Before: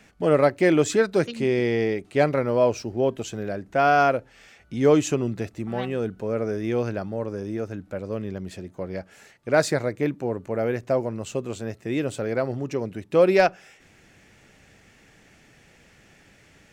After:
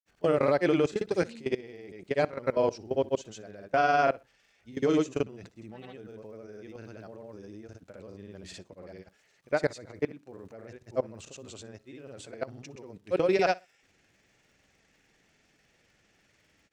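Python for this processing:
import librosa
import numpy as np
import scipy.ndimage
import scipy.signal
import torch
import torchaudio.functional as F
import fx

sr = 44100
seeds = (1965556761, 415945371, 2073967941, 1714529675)

y = scipy.signal.sosfilt(scipy.signal.butter(2, 6100.0, 'lowpass', fs=sr, output='sos'), x)
y = fx.bass_treble(y, sr, bass_db=-3, treble_db=7)
y = fx.level_steps(y, sr, step_db=22)
y = fx.dmg_crackle(y, sr, seeds[0], per_s=250.0, level_db=-60.0)
y = fx.granulator(y, sr, seeds[1], grain_ms=100.0, per_s=20.0, spray_ms=100.0, spread_st=0)
y = fx.echo_feedback(y, sr, ms=61, feedback_pct=24, wet_db=-23.0)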